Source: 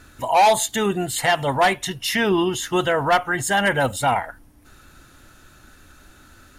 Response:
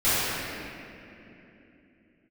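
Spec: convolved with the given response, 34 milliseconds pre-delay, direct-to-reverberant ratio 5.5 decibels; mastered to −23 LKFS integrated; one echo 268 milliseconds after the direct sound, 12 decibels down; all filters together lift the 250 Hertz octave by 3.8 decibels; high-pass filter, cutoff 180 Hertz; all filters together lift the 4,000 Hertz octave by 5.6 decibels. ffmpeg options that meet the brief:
-filter_complex "[0:a]highpass=180,equalizer=frequency=250:width_type=o:gain=7.5,equalizer=frequency=4000:width_type=o:gain=7.5,aecho=1:1:268:0.251,asplit=2[link_01][link_02];[1:a]atrim=start_sample=2205,adelay=34[link_03];[link_02][link_03]afir=irnorm=-1:irlink=0,volume=-24dB[link_04];[link_01][link_04]amix=inputs=2:normalize=0,volume=-6dB"

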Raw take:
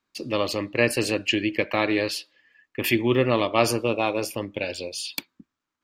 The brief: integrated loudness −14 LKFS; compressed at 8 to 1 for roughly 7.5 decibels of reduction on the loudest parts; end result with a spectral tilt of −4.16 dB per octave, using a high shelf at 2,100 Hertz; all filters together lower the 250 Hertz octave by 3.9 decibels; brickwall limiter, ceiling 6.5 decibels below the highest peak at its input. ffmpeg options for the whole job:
ffmpeg -i in.wav -af "equalizer=frequency=250:width_type=o:gain=-5.5,highshelf=frequency=2100:gain=-3.5,acompressor=threshold=-23dB:ratio=8,volume=17dB,alimiter=limit=-0.5dB:level=0:latency=1" out.wav

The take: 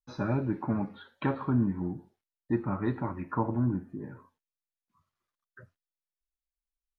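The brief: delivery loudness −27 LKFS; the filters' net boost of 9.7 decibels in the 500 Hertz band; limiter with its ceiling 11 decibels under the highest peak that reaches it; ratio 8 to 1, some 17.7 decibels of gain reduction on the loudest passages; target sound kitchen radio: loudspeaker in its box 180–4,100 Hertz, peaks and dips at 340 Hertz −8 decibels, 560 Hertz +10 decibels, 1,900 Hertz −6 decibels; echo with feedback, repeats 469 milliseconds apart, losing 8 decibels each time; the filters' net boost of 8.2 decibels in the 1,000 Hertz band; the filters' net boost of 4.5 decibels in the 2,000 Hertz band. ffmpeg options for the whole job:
ffmpeg -i in.wav -af "equalizer=frequency=500:width_type=o:gain=5,equalizer=frequency=1000:width_type=o:gain=6.5,equalizer=frequency=2000:width_type=o:gain=6,acompressor=threshold=-38dB:ratio=8,alimiter=level_in=8.5dB:limit=-24dB:level=0:latency=1,volume=-8.5dB,highpass=180,equalizer=frequency=340:width_type=q:width=4:gain=-8,equalizer=frequency=560:width_type=q:width=4:gain=10,equalizer=frequency=1900:width_type=q:width=4:gain=-6,lowpass=frequency=4100:width=0.5412,lowpass=frequency=4100:width=1.3066,aecho=1:1:469|938|1407|1876|2345:0.398|0.159|0.0637|0.0255|0.0102,volume=18.5dB" out.wav

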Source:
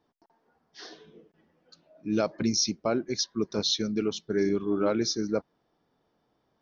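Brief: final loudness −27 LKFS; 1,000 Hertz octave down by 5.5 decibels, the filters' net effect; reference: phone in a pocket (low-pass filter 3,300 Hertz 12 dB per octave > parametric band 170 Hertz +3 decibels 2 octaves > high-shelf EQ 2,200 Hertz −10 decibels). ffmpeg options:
ffmpeg -i in.wav -af "lowpass=3300,equalizer=frequency=170:width_type=o:width=2:gain=3,equalizer=frequency=1000:width_type=o:gain=-6,highshelf=frequency=2200:gain=-10,volume=2dB" out.wav

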